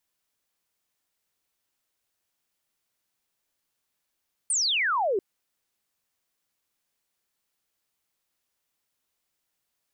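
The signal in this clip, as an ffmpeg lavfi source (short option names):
-f lavfi -i "aevalsrc='0.0794*clip(t/0.002,0,1)*clip((0.69-t)/0.002,0,1)*sin(2*PI*9400*0.69/log(360/9400)*(exp(log(360/9400)*t/0.69)-1))':d=0.69:s=44100"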